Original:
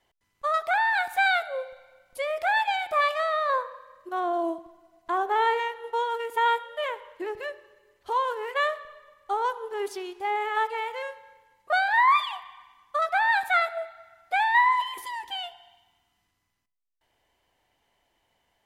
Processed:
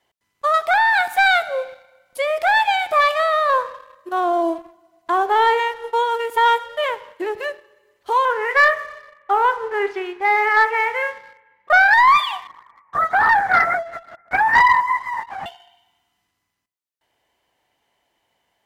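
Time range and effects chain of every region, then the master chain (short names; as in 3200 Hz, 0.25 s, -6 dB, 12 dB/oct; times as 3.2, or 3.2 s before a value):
8.25–11.94 synth low-pass 2000 Hz, resonance Q 2.7 + flutter echo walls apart 7.7 m, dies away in 0.2 s
12.47–15.46 reverse delay 0.167 s, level -7 dB + Chebyshev band-pass 680–2100 Hz, order 4 + LPC vocoder at 8 kHz whisper
whole clip: HPF 130 Hz 6 dB/oct; sample leveller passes 1; gain +4.5 dB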